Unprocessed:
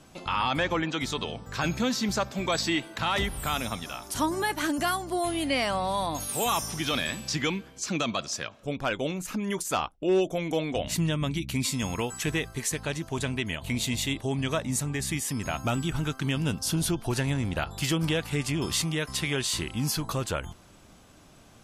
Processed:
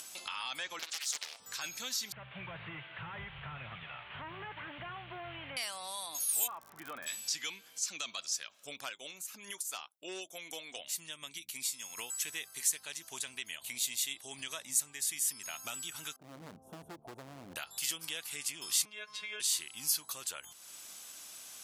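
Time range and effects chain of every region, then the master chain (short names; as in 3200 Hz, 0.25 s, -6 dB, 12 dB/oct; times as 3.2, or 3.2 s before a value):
0.79–1.4 HPF 480 Hz 24 dB/oct + bell 6700 Hz +6.5 dB 0.75 oct + Doppler distortion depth 0.67 ms
2.12–5.57 delta modulation 16 kbps, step -41 dBFS + resonant low shelf 190 Hz +11.5 dB, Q 3
6.46–7.06 LPF 1500 Hz 24 dB/oct + crackle 68/s -41 dBFS
8.89–11.97 low shelf 79 Hz -9.5 dB + upward expander, over -37 dBFS
16.16–17.56 inverse Chebyshev low-pass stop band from 1800 Hz, stop band 50 dB + notches 50/100/150 Hz + hard clip -28.5 dBFS
18.85–19.4 robotiser 211 Hz + LPF 2600 Hz + comb 6.6 ms, depth 89%
whole clip: differentiator; upward compressor, threshold -36 dBFS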